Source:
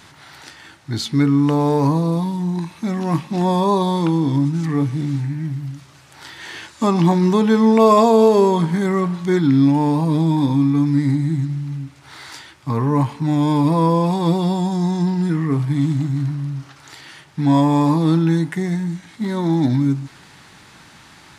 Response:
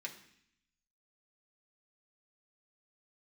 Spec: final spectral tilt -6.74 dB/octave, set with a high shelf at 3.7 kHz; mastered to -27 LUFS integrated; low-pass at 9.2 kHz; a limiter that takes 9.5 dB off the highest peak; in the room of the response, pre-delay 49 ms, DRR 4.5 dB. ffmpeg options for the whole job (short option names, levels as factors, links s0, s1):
-filter_complex "[0:a]lowpass=9200,highshelf=f=3700:g=8,alimiter=limit=0.282:level=0:latency=1,asplit=2[s0][s1];[1:a]atrim=start_sample=2205,adelay=49[s2];[s1][s2]afir=irnorm=-1:irlink=0,volume=0.708[s3];[s0][s3]amix=inputs=2:normalize=0,volume=0.422"